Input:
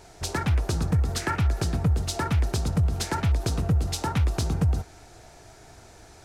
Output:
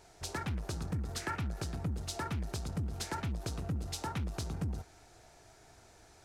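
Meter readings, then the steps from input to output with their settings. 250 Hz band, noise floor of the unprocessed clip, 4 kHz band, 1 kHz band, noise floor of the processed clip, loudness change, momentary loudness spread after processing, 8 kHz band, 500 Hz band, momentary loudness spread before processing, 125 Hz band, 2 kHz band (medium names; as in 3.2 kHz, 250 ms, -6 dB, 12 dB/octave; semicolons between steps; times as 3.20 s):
-10.5 dB, -50 dBFS, -9.5 dB, -9.5 dB, -60 dBFS, -12.0 dB, 2 LU, -9.5 dB, -11.0 dB, 2 LU, -13.0 dB, -9.5 dB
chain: bass shelf 410 Hz -3 dB; transformer saturation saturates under 150 Hz; trim -8.5 dB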